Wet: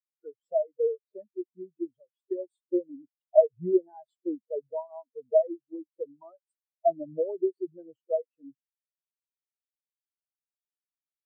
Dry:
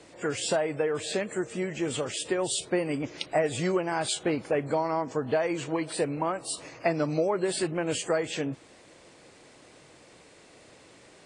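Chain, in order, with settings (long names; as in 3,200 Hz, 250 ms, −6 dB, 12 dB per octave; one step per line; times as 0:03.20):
noise reduction from a noise print of the clip's start 7 dB
every bin expanded away from the loudest bin 4 to 1
level +5 dB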